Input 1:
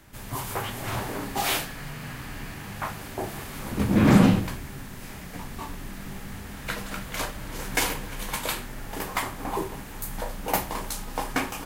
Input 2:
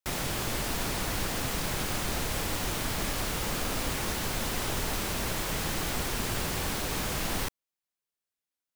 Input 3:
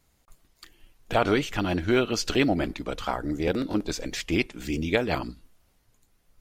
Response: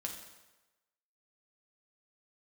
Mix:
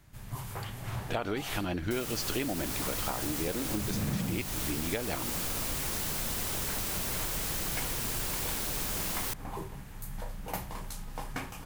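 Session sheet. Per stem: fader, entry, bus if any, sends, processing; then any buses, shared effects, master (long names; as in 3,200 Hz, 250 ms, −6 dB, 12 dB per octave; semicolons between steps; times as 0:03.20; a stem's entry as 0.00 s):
−10.5 dB, 0.00 s, no send, low shelf with overshoot 200 Hz +6.5 dB, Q 1.5
−4.0 dB, 1.85 s, no send, high-shelf EQ 6,200 Hz +10.5 dB
−2.0 dB, 0.00 s, no send, pitch vibrato 0.35 Hz 11 cents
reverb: not used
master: downward compressor 6 to 1, threshold −29 dBFS, peak gain reduction 12 dB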